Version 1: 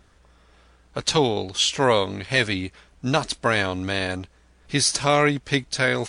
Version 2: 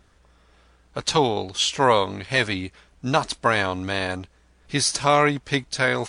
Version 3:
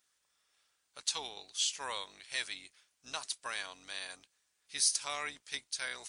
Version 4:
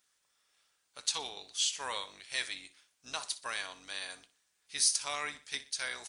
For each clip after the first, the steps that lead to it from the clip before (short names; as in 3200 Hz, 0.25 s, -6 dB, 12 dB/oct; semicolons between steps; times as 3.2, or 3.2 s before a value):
dynamic EQ 970 Hz, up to +6 dB, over -36 dBFS, Q 1.4; gain -1.5 dB
octaver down 2 oct, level +1 dB; differentiator; gain -5 dB
flange 0.76 Hz, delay 6.5 ms, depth 3.2 ms, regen -81%; feedback echo 61 ms, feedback 36%, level -16 dB; gain +6 dB